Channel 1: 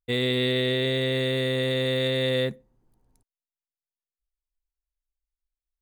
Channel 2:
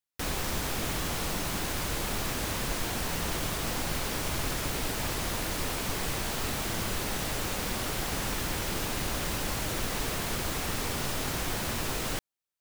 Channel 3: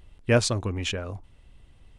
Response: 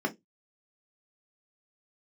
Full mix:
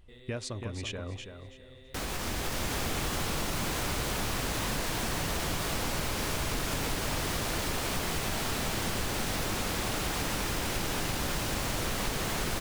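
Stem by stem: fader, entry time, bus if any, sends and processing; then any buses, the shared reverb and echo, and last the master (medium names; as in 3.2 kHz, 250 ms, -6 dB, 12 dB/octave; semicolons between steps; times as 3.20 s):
-15.0 dB, 0.00 s, bus A, no send, no echo send, compression 2.5:1, threshold -39 dBFS, peak gain reduction 12 dB
+1.5 dB, 1.75 s, bus A, no send, echo send -7 dB, treble shelf 12 kHz -5 dB; level rider gain up to 11 dB
-6.5 dB, 0.00 s, no bus, no send, echo send -7.5 dB, compression 4:1, threshold -26 dBFS, peak gain reduction 10 dB
bus A: 0.0 dB, chorus 1.9 Hz, delay 18.5 ms, depth 7.8 ms; compression, threshold -30 dBFS, peak gain reduction 12.5 dB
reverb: none
echo: feedback delay 329 ms, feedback 22%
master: compression 3:1, threshold -30 dBFS, peak gain reduction 8 dB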